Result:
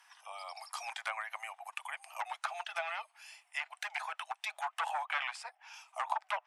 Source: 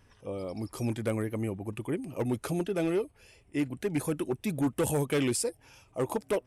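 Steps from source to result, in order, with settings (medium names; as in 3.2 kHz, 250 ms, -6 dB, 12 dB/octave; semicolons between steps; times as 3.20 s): steep high-pass 720 Hz 72 dB/octave; low-pass that closes with the level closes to 2 kHz, closed at -36.5 dBFS; trim +5.5 dB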